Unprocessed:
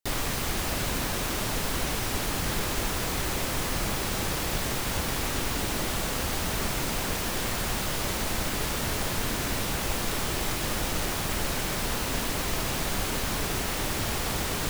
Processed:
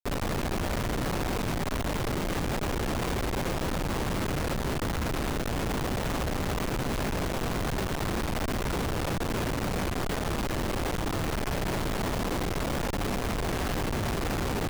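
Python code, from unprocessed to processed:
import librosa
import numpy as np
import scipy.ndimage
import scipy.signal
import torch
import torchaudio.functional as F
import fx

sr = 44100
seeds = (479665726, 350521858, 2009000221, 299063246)

y = fx.schmitt(x, sr, flips_db=-26.5)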